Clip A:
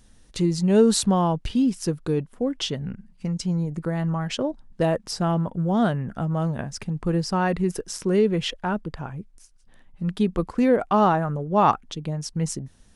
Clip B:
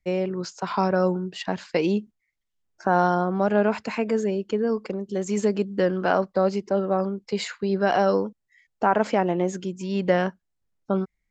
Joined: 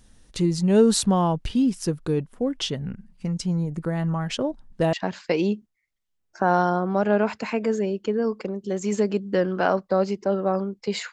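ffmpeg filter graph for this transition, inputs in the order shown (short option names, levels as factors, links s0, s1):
-filter_complex "[0:a]apad=whole_dur=11.12,atrim=end=11.12,atrim=end=4.932[s0];[1:a]atrim=start=1.378:end=7.57[s1];[s0][s1]acrossfade=d=0.004:c1=hsin:c2=hsin"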